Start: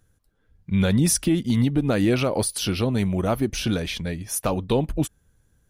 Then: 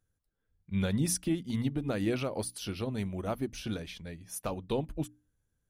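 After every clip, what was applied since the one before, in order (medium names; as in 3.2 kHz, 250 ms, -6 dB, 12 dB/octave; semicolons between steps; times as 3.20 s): hum notches 60/120/180/240/300 Hz; upward expansion 1.5:1, over -31 dBFS; trim -8.5 dB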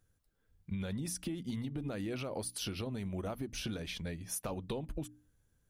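peak limiter -26.5 dBFS, peak gain reduction 7 dB; compression, threshold -41 dBFS, peak gain reduction 10 dB; trim +5.5 dB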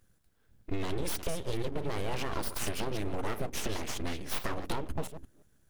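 chunks repeated in reverse 175 ms, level -11.5 dB; full-wave rectifier; trim +7.5 dB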